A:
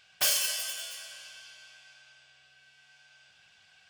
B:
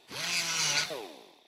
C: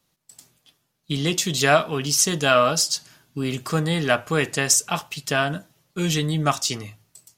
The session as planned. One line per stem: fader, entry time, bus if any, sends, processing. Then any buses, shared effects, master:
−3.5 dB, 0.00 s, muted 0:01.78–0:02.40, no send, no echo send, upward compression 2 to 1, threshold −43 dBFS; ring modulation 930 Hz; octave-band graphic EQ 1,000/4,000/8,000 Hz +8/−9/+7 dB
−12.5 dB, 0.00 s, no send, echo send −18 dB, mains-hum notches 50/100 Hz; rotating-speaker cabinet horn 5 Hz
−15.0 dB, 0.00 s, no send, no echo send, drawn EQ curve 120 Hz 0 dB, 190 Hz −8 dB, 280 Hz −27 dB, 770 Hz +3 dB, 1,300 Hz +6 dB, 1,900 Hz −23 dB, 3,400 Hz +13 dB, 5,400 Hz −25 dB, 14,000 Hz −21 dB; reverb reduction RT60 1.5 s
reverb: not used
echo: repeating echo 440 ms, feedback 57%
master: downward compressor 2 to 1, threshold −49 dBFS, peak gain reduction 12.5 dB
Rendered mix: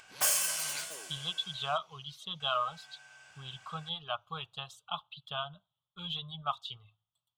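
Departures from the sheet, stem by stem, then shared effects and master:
stem A: missing ring modulation 930 Hz
stem B: missing rotating-speaker cabinet horn 5 Hz
master: missing downward compressor 2 to 1, threshold −49 dBFS, peak gain reduction 12.5 dB

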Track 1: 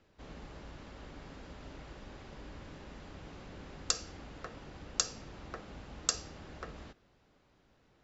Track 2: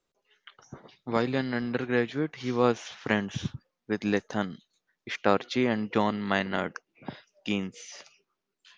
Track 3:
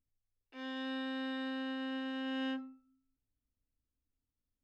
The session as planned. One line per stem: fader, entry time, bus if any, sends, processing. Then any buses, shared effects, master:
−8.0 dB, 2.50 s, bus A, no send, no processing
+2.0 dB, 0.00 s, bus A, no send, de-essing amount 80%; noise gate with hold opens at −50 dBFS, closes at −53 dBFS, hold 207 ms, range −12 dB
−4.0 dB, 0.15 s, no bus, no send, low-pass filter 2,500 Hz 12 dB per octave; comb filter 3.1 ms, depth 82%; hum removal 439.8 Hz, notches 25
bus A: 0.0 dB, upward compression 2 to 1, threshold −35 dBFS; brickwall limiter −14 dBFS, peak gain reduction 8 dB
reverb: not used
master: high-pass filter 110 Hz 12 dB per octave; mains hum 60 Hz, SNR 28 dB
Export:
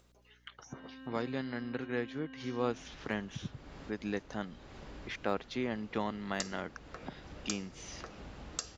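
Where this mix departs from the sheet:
stem 2 +2.0 dB → −9.5 dB
stem 3 −4.0 dB → −13.5 dB
master: missing high-pass filter 110 Hz 12 dB per octave

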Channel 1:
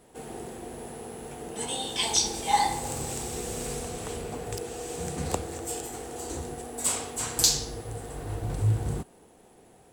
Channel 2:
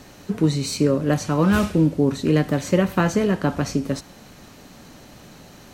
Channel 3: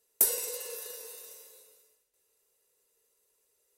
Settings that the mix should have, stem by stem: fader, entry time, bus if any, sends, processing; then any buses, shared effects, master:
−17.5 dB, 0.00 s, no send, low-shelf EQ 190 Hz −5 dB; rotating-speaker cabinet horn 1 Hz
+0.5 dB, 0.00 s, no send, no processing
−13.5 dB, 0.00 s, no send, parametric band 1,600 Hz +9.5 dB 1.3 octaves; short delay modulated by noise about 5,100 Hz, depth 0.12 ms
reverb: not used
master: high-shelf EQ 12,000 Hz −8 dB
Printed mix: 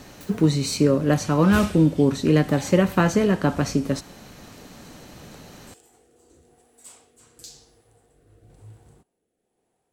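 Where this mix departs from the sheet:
stem 3 −13.5 dB → −23.5 dB
master: missing high-shelf EQ 12,000 Hz −8 dB

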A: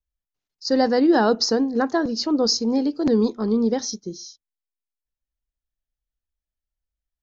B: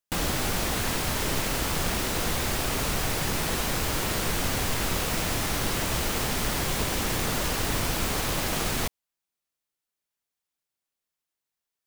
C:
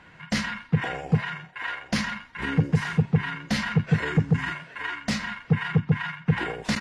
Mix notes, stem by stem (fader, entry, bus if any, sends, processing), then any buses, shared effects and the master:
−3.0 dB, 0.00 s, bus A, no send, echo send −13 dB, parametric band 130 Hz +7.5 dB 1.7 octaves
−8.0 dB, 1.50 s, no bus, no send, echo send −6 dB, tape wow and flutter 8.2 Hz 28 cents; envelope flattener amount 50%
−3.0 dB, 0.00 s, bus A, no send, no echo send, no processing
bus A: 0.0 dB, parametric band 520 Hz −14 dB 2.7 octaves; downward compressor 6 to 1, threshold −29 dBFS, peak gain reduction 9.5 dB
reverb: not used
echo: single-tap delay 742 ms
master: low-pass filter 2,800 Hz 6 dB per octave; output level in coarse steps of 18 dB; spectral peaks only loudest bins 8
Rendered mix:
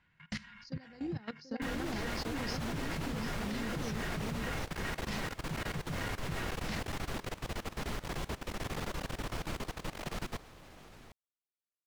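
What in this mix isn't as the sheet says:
stem A −3.0 dB → −10.0 dB
stem B: missing envelope flattener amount 50%
master: missing spectral peaks only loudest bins 8

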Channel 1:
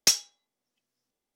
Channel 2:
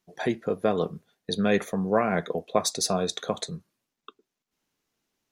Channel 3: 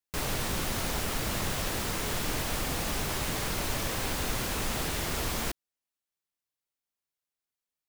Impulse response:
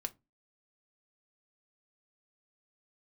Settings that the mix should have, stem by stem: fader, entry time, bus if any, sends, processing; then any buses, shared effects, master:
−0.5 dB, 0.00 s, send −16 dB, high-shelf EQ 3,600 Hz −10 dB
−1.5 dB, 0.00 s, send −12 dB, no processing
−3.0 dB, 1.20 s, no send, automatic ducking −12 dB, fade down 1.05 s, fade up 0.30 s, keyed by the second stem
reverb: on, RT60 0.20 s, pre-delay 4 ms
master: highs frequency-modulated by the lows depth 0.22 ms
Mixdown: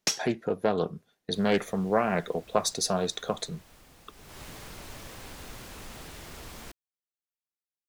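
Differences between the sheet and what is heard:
stem 2: send off
stem 3 −3.0 dB → −12.0 dB

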